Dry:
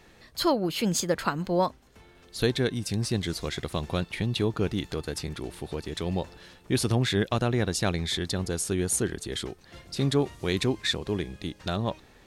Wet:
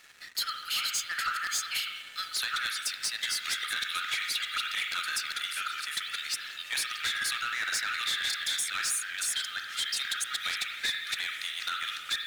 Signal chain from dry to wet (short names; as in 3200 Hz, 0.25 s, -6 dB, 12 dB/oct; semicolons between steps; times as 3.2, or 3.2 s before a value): reverse delay 0.64 s, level -2 dB; brick-wall FIR high-pass 1200 Hz; compressor 10:1, threshold -35 dBFS, peak gain reduction 14.5 dB; reverb removal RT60 0.53 s; spring tank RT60 1.4 s, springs 33/42 ms, chirp 65 ms, DRR 2.5 dB; sample leveller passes 3; gain -1.5 dB